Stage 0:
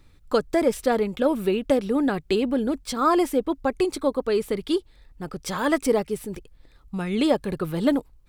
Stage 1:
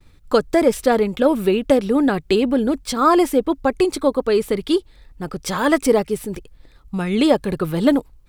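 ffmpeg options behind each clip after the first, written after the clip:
ffmpeg -i in.wav -af "agate=range=-33dB:threshold=-51dB:ratio=3:detection=peak,volume=5.5dB" out.wav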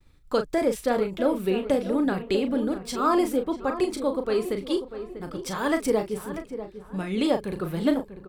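ffmpeg -i in.wav -filter_complex "[0:a]asplit=2[link_01][link_02];[link_02]adelay=37,volume=-8dB[link_03];[link_01][link_03]amix=inputs=2:normalize=0,asplit=2[link_04][link_05];[link_05]adelay=643,lowpass=frequency=1800:poles=1,volume=-11dB,asplit=2[link_06][link_07];[link_07]adelay=643,lowpass=frequency=1800:poles=1,volume=0.42,asplit=2[link_08][link_09];[link_09]adelay=643,lowpass=frequency=1800:poles=1,volume=0.42,asplit=2[link_10][link_11];[link_11]adelay=643,lowpass=frequency=1800:poles=1,volume=0.42[link_12];[link_06][link_08][link_10][link_12]amix=inputs=4:normalize=0[link_13];[link_04][link_13]amix=inputs=2:normalize=0,volume=-8.5dB" out.wav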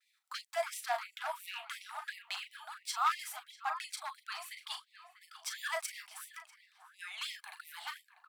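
ffmpeg -i in.wav -af "volume=18.5dB,asoftclip=hard,volume=-18.5dB,afftfilt=real='re*gte(b*sr/1024,620*pow(1900/620,0.5+0.5*sin(2*PI*2.9*pts/sr)))':imag='im*gte(b*sr/1024,620*pow(1900/620,0.5+0.5*sin(2*PI*2.9*pts/sr)))':win_size=1024:overlap=0.75,volume=-3.5dB" out.wav

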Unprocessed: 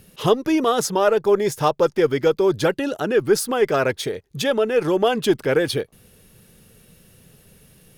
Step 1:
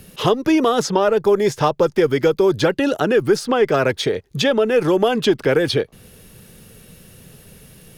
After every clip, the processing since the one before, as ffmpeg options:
ffmpeg -i in.wav -filter_complex "[0:a]acrossover=split=290|6300[link_01][link_02][link_03];[link_01]acompressor=threshold=-29dB:ratio=4[link_04];[link_02]acompressor=threshold=-22dB:ratio=4[link_05];[link_03]acompressor=threshold=-53dB:ratio=4[link_06];[link_04][link_05][link_06]amix=inputs=3:normalize=0,volume=7dB" out.wav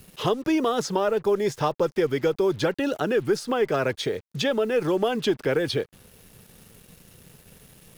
ffmpeg -i in.wav -af "acrusher=bits=6:mix=0:aa=0.5,volume=-7dB" out.wav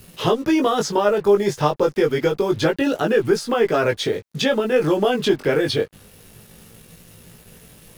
ffmpeg -i in.wav -af "flanger=delay=17.5:depth=2.8:speed=0.28,volume=8dB" out.wav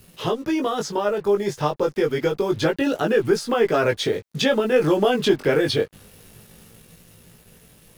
ffmpeg -i in.wav -af "dynaudnorm=framelen=400:gausssize=9:maxgain=11.5dB,volume=-5dB" out.wav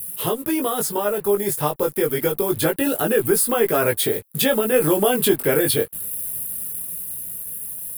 ffmpeg -i in.wav -af "aexciter=amount=14.2:drive=7.4:freq=8800" out.wav

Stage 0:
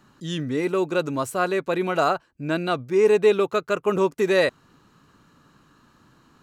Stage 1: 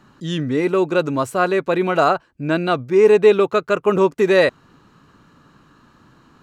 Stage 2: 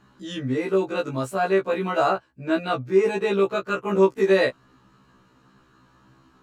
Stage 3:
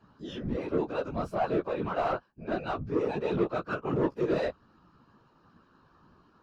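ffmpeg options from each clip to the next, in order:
ffmpeg -i in.wav -af "highshelf=frequency=5700:gain=-8.5,volume=5.5dB" out.wav
ffmpeg -i in.wav -af "afftfilt=real='re*1.73*eq(mod(b,3),0)':imag='im*1.73*eq(mod(b,3),0)':win_size=2048:overlap=0.75,volume=-3dB" out.wav
ffmpeg -i in.wav -filter_complex "[0:a]equalizer=frequency=125:width_type=o:width=0.33:gain=9,equalizer=frequency=200:width_type=o:width=0.33:gain=7,equalizer=frequency=2000:width_type=o:width=0.33:gain=-9,equalizer=frequency=5000:width_type=o:width=0.33:gain=9,equalizer=frequency=8000:width_type=o:width=0.33:gain=-8,asplit=2[link_01][link_02];[link_02]highpass=frequency=720:poles=1,volume=19dB,asoftclip=type=tanh:threshold=-7dB[link_03];[link_01][link_03]amix=inputs=2:normalize=0,lowpass=frequency=1000:poles=1,volume=-6dB,afftfilt=real='hypot(re,im)*cos(2*PI*random(0))':imag='hypot(re,im)*sin(2*PI*random(1))':win_size=512:overlap=0.75,volume=-6dB" out.wav

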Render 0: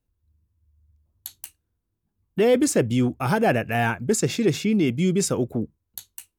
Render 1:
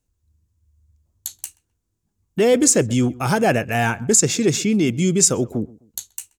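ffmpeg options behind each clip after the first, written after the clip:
ffmpeg -i in.wav -filter_complex "[0:a]equalizer=frequency=7000:width_type=o:width=0.83:gain=11.5,asplit=2[link_01][link_02];[link_02]adelay=129,lowpass=frequency=1900:poles=1,volume=-21.5dB,asplit=2[link_03][link_04];[link_04]adelay=129,lowpass=frequency=1900:poles=1,volume=0.32[link_05];[link_01][link_03][link_05]amix=inputs=3:normalize=0,volume=2.5dB" out.wav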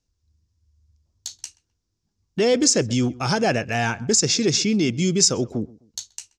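ffmpeg -i in.wav -filter_complex "[0:a]asplit=2[link_01][link_02];[link_02]alimiter=limit=-10.5dB:level=0:latency=1:release=129,volume=-3dB[link_03];[link_01][link_03]amix=inputs=2:normalize=0,lowpass=frequency=5300:width_type=q:width=3.5,volume=-7dB" out.wav

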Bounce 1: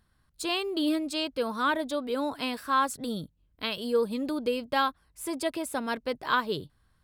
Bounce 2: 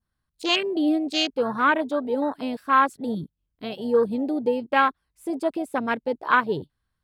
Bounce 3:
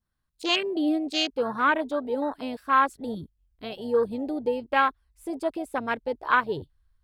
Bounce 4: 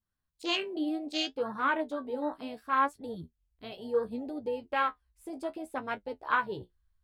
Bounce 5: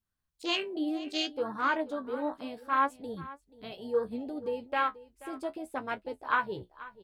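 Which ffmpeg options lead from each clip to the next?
ffmpeg -i in.wav -af "adynamicequalizer=threshold=0.0112:dfrequency=2800:dqfactor=0.82:tfrequency=2800:tqfactor=0.82:attack=5:release=100:ratio=0.375:range=2.5:mode=boostabove:tftype=bell,afwtdn=0.0316,volume=5.5dB" out.wav
ffmpeg -i in.wav -af "asubboost=boost=11:cutoff=56,volume=-2dB" out.wav
ffmpeg -i in.wav -af "flanger=delay=9.5:depth=7.6:regen=43:speed=0.67:shape=triangular,volume=-2.5dB" out.wav
ffmpeg -i in.wav -af "aecho=1:1:483:0.126" out.wav

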